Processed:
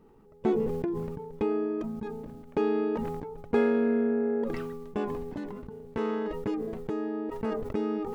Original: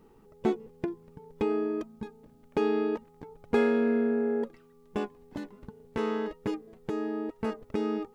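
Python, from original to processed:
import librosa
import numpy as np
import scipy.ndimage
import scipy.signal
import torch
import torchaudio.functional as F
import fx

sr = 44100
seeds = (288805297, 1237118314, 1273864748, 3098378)

y = fx.high_shelf(x, sr, hz=2400.0, db=-7.5)
y = fx.sustainer(y, sr, db_per_s=31.0)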